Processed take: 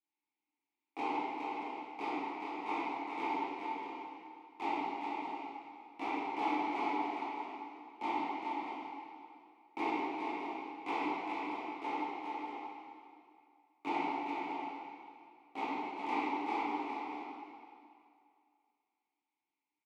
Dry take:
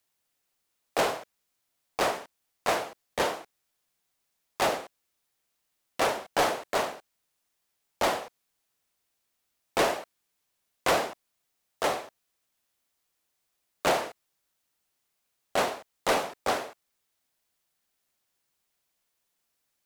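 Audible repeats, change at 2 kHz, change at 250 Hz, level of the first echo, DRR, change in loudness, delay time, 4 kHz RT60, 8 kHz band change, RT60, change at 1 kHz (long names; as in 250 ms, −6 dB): 2, −9.0 dB, +1.0 dB, −5.0 dB, −10.0 dB, −9.0 dB, 413 ms, 2.1 s, below −25 dB, 2.3 s, −3.5 dB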